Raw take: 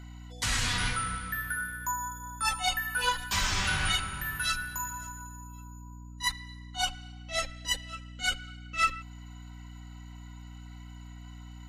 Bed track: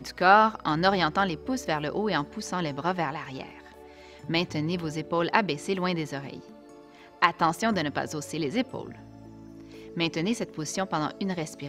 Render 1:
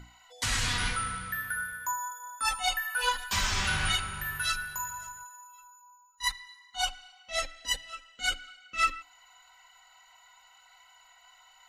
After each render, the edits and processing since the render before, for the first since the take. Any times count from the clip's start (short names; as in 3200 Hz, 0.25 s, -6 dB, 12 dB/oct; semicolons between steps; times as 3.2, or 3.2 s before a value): notches 60/120/180/240/300 Hz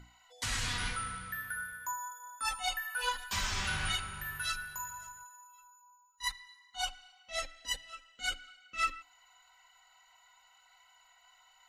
gain -5.5 dB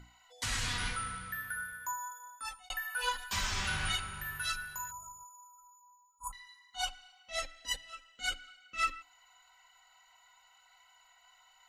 2.17–2.7 fade out; 4.91–6.33 brick-wall FIR band-stop 1400–6400 Hz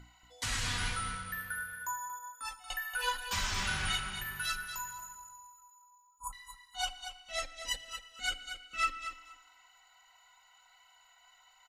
feedback echo 0.233 s, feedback 17%, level -9.5 dB; FDN reverb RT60 2 s, low-frequency decay 0.85×, high-frequency decay 0.95×, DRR 18 dB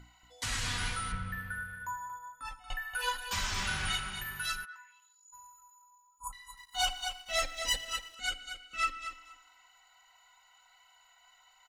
1.12–2.95 tone controls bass +10 dB, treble -11 dB; 4.64–5.32 band-pass 1200 Hz -> 6700 Hz, Q 4.5; 6.57–8.15 sample leveller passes 2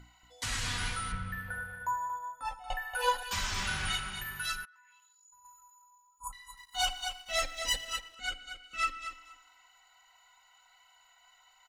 1.48–3.23 band shelf 660 Hz +11.5 dB 1.2 oct; 4.65–5.45 compressor 16:1, threshold -57 dBFS; 8–8.64 high shelf 4300 Hz -7 dB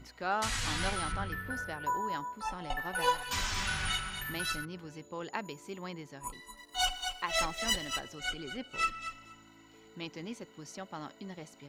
add bed track -14.5 dB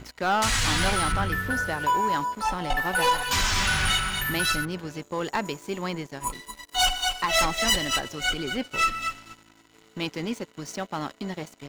sample leveller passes 3